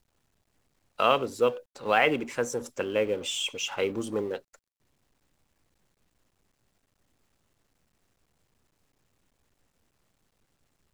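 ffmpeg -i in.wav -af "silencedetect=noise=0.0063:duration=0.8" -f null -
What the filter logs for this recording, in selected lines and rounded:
silence_start: 0.00
silence_end: 0.99 | silence_duration: 0.99
silence_start: 4.55
silence_end: 10.93 | silence_duration: 6.38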